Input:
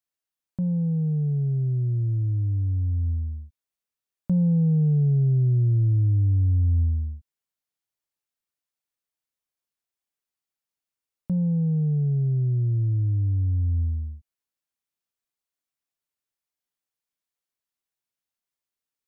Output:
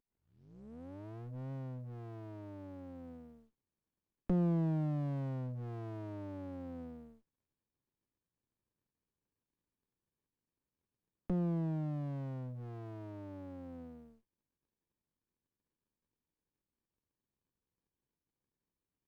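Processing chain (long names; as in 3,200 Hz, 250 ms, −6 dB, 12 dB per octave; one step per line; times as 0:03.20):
turntable start at the beginning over 1.52 s
high-pass filter 250 Hz 24 dB per octave
notch filter 370 Hz, Q 12
windowed peak hold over 65 samples
level +3.5 dB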